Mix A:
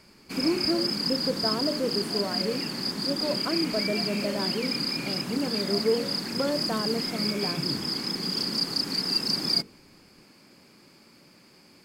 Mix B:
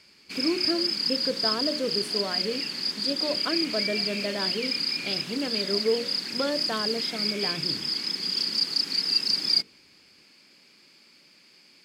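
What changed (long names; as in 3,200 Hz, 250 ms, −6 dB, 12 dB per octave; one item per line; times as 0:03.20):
background −7.5 dB
master: add meter weighting curve D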